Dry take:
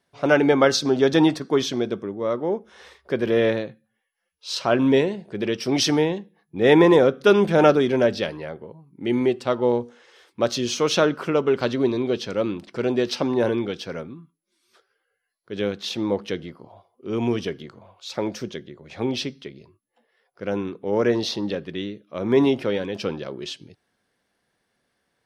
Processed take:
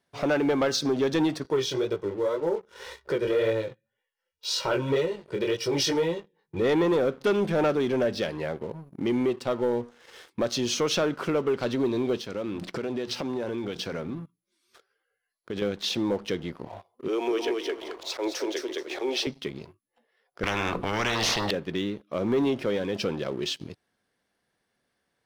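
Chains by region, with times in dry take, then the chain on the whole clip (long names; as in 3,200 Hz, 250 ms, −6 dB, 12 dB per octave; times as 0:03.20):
0:01.43–0:06.62: comb filter 2.1 ms, depth 81% + chorus effect 1.9 Hz, delay 17.5 ms, depth 6.4 ms
0:12.21–0:15.62: mains-hum notches 60/120/180 Hz + downward compressor 3 to 1, threshold −35 dBFS
0:17.08–0:19.27: Butterworth high-pass 310 Hz 48 dB per octave + volume swells 102 ms + repeating echo 215 ms, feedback 19%, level −3.5 dB
0:20.43–0:21.51: spectral tilt −4.5 dB per octave + mains-hum notches 60/120/180/240/300/360/420/480/540 Hz + every bin compressed towards the loudest bin 10 to 1
whole clip: downward compressor 2 to 1, threshold −38 dBFS; leveller curve on the samples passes 2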